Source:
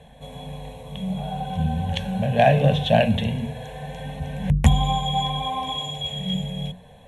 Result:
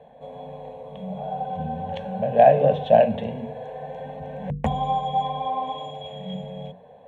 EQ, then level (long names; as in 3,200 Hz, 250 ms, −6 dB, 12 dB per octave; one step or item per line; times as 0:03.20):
resonant band-pass 560 Hz, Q 1.3
+4.5 dB